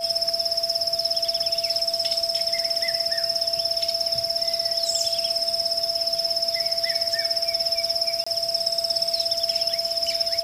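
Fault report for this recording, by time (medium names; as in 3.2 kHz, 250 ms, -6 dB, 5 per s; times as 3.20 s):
whine 670 Hz -29 dBFS
8.24–8.27 s: dropout 25 ms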